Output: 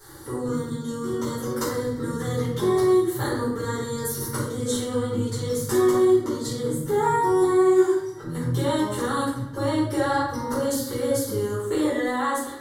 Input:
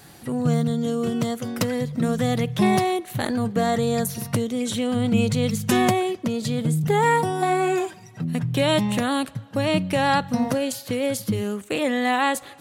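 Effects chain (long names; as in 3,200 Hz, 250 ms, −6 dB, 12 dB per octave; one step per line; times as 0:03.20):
downward compressor, threshold −23 dBFS, peak gain reduction 9 dB
phaser with its sweep stopped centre 690 Hz, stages 6
convolution reverb RT60 0.75 s, pre-delay 5 ms, DRR −10.5 dB
level −6 dB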